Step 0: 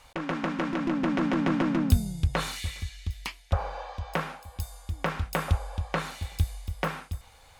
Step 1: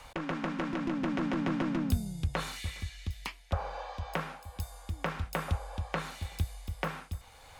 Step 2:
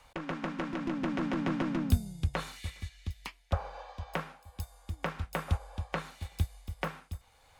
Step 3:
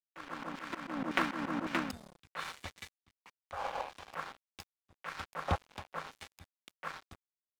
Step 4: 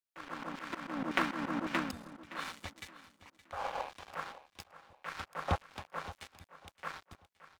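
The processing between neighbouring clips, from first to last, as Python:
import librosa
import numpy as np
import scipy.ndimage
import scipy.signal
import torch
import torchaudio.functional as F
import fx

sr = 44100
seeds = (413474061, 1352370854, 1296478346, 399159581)

y1 = fx.band_squash(x, sr, depth_pct=40)
y1 = F.gain(torch.from_numpy(y1), -5.0).numpy()
y2 = fx.upward_expand(y1, sr, threshold_db=-47.0, expansion=1.5)
y2 = F.gain(torch.from_numpy(y2), 3.5).numpy()
y3 = fx.filter_lfo_bandpass(y2, sr, shape='saw_down', hz=1.8, low_hz=740.0, high_hz=2400.0, q=0.76)
y3 = np.sign(y3) * np.maximum(np.abs(y3) - 10.0 ** (-51.5 / 20.0), 0.0)
y3 = fx.auto_swell(y3, sr, attack_ms=149.0)
y3 = F.gain(torch.from_numpy(y3), 13.0).numpy()
y4 = fx.echo_feedback(y3, sr, ms=569, feedback_pct=34, wet_db=-16.0)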